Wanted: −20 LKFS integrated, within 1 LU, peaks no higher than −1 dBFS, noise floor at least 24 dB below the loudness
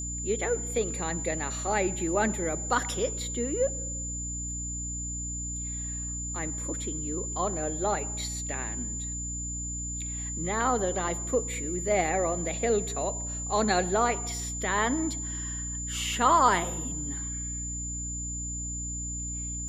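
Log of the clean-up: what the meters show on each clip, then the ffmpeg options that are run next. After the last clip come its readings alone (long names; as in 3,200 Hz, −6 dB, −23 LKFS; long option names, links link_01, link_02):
mains hum 60 Hz; hum harmonics up to 300 Hz; level of the hum −35 dBFS; interfering tone 7,100 Hz; level of the tone −34 dBFS; integrated loudness −29.5 LKFS; sample peak −8.5 dBFS; target loudness −20.0 LKFS
→ -af "bandreject=frequency=60:width_type=h:width=4,bandreject=frequency=120:width_type=h:width=4,bandreject=frequency=180:width_type=h:width=4,bandreject=frequency=240:width_type=h:width=4,bandreject=frequency=300:width_type=h:width=4"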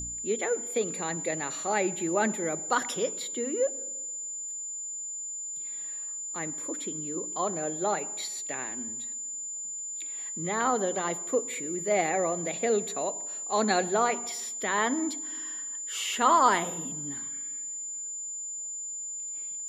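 mains hum none found; interfering tone 7,100 Hz; level of the tone −34 dBFS
→ -af "bandreject=frequency=7100:width=30"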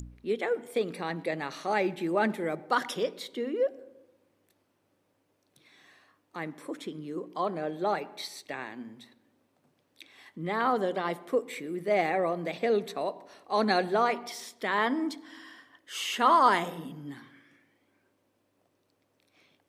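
interfering tone none found; integrated loudness −30.0 LKFS; sample peak −9.0 dBFS; target loudness −20.0 LKFS
→ -af "volume=10dB,alimiter=limit=-1dB:level=0:latency=1"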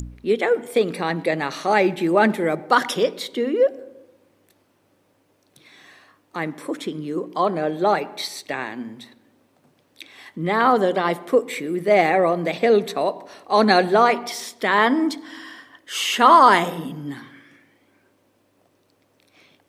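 integrated loudness −20.0 LKFS; sample peak −1.0 dBFS; background noise floor −64 dBFS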